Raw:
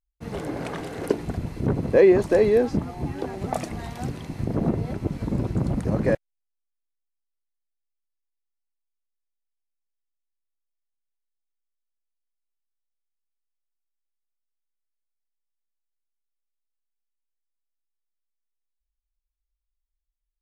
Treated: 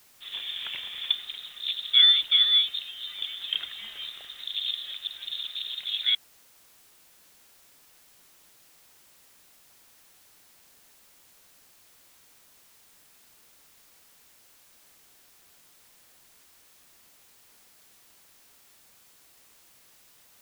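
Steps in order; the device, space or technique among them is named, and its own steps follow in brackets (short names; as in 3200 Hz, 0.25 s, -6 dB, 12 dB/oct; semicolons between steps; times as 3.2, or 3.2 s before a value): scrambled radio voice (BPF 360–2900 Hz; inverted band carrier 3900 Hz; white noise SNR 25 dB); gain -1 dB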